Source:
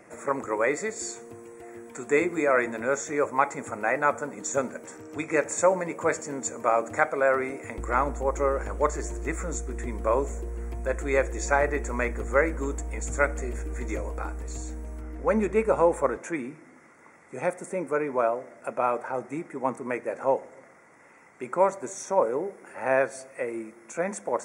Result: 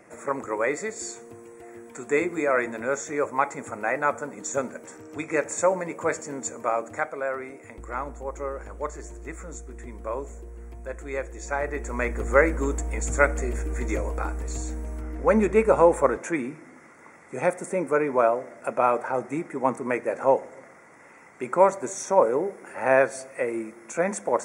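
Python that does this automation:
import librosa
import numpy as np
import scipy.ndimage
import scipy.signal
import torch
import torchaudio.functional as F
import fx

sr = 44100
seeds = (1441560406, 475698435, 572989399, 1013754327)

y = fx.gain(x, sr, db=fx.line((6.48, -0.5), (7.33, -7.0), (11.41, -7.0), (12.3, 4.0)))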